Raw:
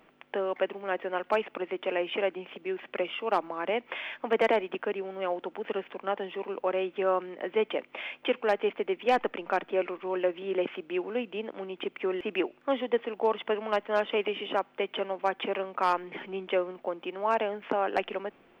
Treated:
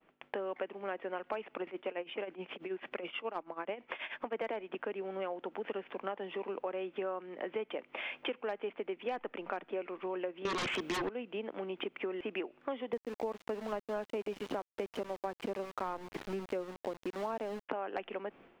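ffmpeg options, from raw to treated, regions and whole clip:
-filter_complex "[0:a]asettb=1/sr,asplit=3[a][b][c];[a]atrim=end=1.674[d];[b]atrim=start=1.67:end=4.35,asetpts=PTS-STARTPTS,afade=t=in:d=0.004:c=qsin,afade=t=out:st=2.676:d=0.004:c=qsin,acompressor=mode=upward:threshold=-36dB:ratio=2.5:attack=3.2:release=140:knee=2.83:detection=peak,tremolo=f=9.3:d=0.83[e];[c]atrim=start=4.346[f];[d][e]acrossfade=d=0.004:c1=hsin:c2=qsin[g];[g][f]acrossfade=d=0.004:c1=qsin:c2=hsin,asettb=1/sr,asplit=3[h][i][j];[h]atrim=end=10.454[k];[i]atrim=start=10.45:end=11.09,asetpts=PTS-STARTPTS,afade=t=in:d=0.004:c=qsin,afade=t=out:st=0.636:d=0.004:c=qsin,highshelf=f=3k:g=10.5,aeval=exprs='0.133*sin(PI/2*6.31*val(0)/0.133)':c=same[l];[j]atrim=start=11.086[m];[k][l]acrossfade=d=0.004:c1=hsin:c2=qsin[n];[n][m]acrossfade=d=0.004:c1=qsin:c2=hsin,asettb=1/sr,asplit=3[o][p][q];[o]atrim=end=12.934[r];[p]atrim=start=12.93:end=17.69,asetpts=PTS-STARTPTS,afade=t=in:d=0.004:c=qsin,afade=t=out:st=4.756:d=0.004:c=qsin,aemphasis=mode=reproduction:type=riaa,aeval=exprs='val(0)*gte(abs(val(0)),0.0188)':c=same[s];[q]atrim=start=17.686[t];[r][s]acrossfade=d=0.004:c1=hsin:c2=qsin[u];[u][t]acrossfade=d=0.004:c1=qsin:c2=hsin,agate=range=-33dB:threshold=-53dB:ratio=3:detection=peak,lowpass=f=3.7k:p=1,acompressor=threshold=-37dB:ratio=5,volume=1.5dB"

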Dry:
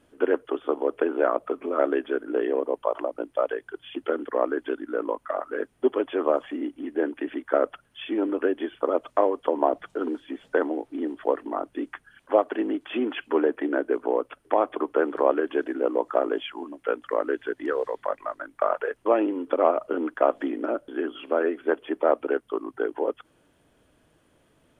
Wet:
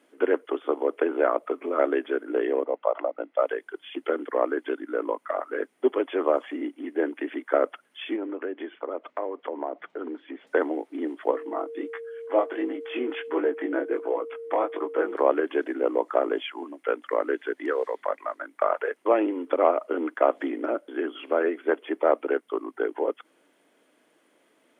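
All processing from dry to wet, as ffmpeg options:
-filter_complex "[0:a]asettb=1/sr,asplit=3[a][b][c];[a]atrim=end=2.644[d];[b]atrim=start=2.64:end=3.42,asetpts=PTS-STARTPTS,afade=t=in:d=0.004:c=qsin,afade=t=out:st=0.776:d=0.004:c=qsin,highpass=170,lowpass=2.8k,equalizer=f=390:w=5.5:g=-5.5,aecho=1:1:1.5:0.31,atrim=end_sample=34398[e];[c]atrim=start=3.416[f];[d][e]acrossfade=d=0.004:c1=hsin:c2=qsin[g];[g][f]acrossfade=d=0.004:c1=qsin:c2=hsin,asettb=1/sr,asplit=3[h][i][j];[h]atrim=end=8.164[k];[i]atrim=start=8.16:end=10.47,asetpts=PTS-STARTPTS,afade=t=in:d=0.004:c=qsin,afade=t=out:st=2.306:d=0.004:c=qsin,acompressor=threshold=-33dB:ratio=2:attack=3.2:release=140:knee=1:detection=peak,lowpass=2.8k[l];[j]atrim=start=10.466[m];[k][l]acrossfade=d=0.004:c1=hsin:c2=qsin[n];[n][m]acrossfade=d=0.004:c1=qsin:c2=hsin,asettb=1/sr,asplit=3[o][p][q];[o]atrim=end=11.314[r];[p]atrim=start=11.31:end=15.15,asetpts=PTS-STARTPTS,afade=t=in:d=0.004:c=qsin,afade=t=out:st=3.836:d=0.004:c=qsin,aecho=1:1:6.1:0.38,atrim=end_sample=169344,flanger=delay=17.5:depth=7.3:speed=1.4,aeval=exprs='val(0)+0.0178*sin(2*PI*460*n/s)':c=same[s];[q]atrim=start=15.146[t];[r][s]acrossfade=d=0.004:c1=hsin:c2=qsin[u];[u][t]acrossfade=d=0.004:c1=qsin:c2=hsin,highpass=f=250:w=0.5412,highpass=f=250:w=1.3066,equalizer=f=2.1k:w=6.1:g=7"

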